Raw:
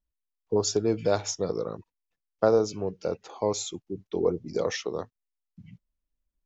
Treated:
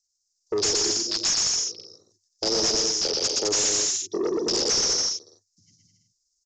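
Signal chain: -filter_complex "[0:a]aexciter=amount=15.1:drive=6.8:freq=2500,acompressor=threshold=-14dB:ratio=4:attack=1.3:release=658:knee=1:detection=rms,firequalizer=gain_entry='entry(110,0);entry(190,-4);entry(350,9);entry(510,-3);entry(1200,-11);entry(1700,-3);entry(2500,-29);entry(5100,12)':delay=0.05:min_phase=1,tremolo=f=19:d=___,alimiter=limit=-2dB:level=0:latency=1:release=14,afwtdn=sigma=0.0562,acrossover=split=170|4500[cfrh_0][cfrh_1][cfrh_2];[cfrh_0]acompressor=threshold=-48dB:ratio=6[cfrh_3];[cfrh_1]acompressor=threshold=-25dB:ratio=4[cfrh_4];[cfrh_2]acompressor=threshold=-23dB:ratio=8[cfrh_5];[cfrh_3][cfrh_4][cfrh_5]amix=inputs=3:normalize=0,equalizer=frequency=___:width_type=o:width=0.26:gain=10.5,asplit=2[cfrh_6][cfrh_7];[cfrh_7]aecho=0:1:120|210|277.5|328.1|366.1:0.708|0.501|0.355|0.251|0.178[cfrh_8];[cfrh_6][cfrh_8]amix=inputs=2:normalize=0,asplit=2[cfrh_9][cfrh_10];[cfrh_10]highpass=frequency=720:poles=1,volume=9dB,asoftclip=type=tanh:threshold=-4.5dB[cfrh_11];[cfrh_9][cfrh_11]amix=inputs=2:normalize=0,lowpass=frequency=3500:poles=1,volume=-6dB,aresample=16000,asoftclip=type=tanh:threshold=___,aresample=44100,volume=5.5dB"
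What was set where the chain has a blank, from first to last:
0.41, 97, -25.5dB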